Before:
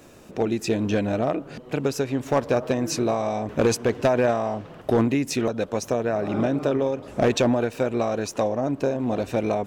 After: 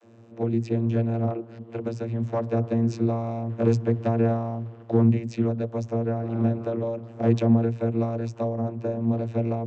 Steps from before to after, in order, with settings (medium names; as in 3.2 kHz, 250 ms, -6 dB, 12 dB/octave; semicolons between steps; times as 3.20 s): vocoder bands 32, saw 115 Hz